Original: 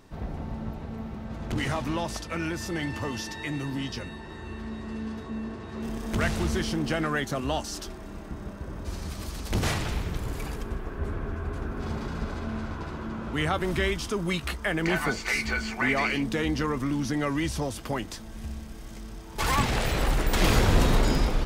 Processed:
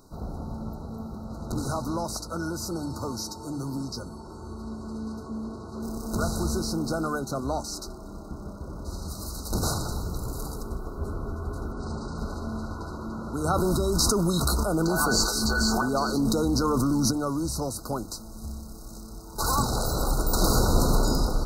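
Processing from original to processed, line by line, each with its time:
0:07.19–0:09.08: high-shelf EQ 7,900 Hz −7.5 dB
0:11.72–0:12.18: elliptic low-pass filter 9,000 Hz
0:13.44–0:17.11: envelope flattener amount 100%
whole clip: mains-hum notches 50/100/150 Hz; brick-wall band-stop 1,500–3,800 Hz; high-shelf EQ 7,000 Hz +9.5 dB

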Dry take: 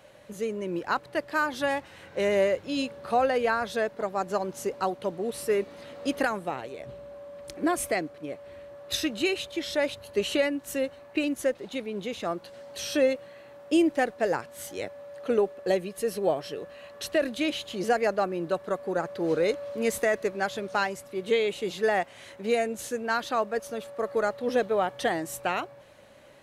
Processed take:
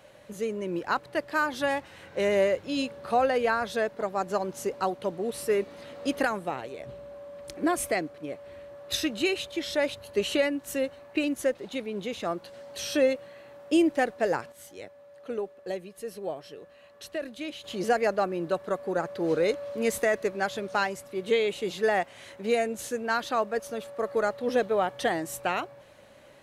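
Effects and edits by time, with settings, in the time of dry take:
0:14.52–0:17.64: clip gain −8.5 dB

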